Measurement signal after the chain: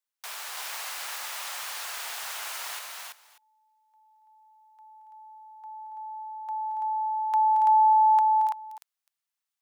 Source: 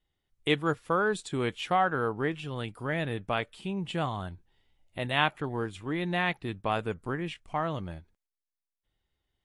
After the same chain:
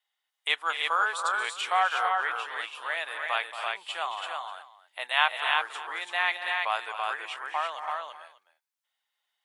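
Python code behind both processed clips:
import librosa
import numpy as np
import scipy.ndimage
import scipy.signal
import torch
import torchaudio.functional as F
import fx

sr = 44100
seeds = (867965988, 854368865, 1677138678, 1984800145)

y = scipy.signal.sosfilt(scipy.signal.butter(4, 790.0, 'highpass', fs=sr, output='sos'), x)
y = fx.echo_multitap(y, sr, ms=(226, 281, 334, 590), db=(-11.5, -10.0, -3.5, -19.5))
y = y * 10.0 ** (3.5 / 20.0)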